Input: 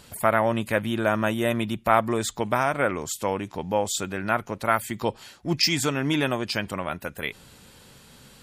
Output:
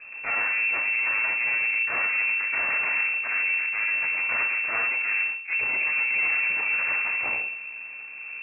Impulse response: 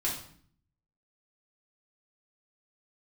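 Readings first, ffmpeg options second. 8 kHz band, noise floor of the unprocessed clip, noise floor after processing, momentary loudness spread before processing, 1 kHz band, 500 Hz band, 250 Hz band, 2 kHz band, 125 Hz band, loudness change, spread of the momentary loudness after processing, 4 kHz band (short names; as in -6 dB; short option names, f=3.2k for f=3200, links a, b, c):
under -40 dB, -52 dBFS, -39 dBFS, 9 LU, -10.0 dB, -18.5 dB, under -20 dB, +9.0 dB, under -25 dB, +2.5 dB, 6 LU, under -25 dB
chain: -filter_complex "[0:a]asplit=2[a][b];[b]acrusher=samples=12:mix=1:aa=0.000001,volume=-8dB[c];[a][c]amix=inputs=2:normalize=0,lowshelf=f=350:g=10[d];[1:a]atrim=start_sample=2205,asetrate=43659,aresample=44100[e];[d][e]afir=irnorm=-1:irlink=0,areverse,acompressor=threshold=-18dB:ratio=6,areverse,aeval=exprs='abs(val(0))':c=same,lowpass=f=2.3k:t=q:w=0.5098,lowpass=f=2.3k:t=q:w=0.6013,lowpass=f=2.3k:t=q:w=0.9,lowpass=f=2.3k:t=q:w=2.563,afreqshift=-2700,volume=-4.5dB"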